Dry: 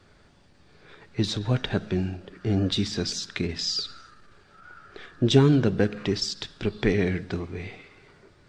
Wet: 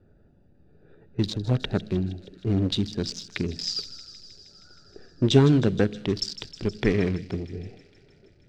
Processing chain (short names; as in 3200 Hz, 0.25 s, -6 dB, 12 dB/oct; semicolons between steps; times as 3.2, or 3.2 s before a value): Wiener smoothing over 41 samples; thin delay 0.157 s, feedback 75%, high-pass 3200 Hz, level -12.5 dB; gain +1 dB; MP3 192 kbps 44100 Hz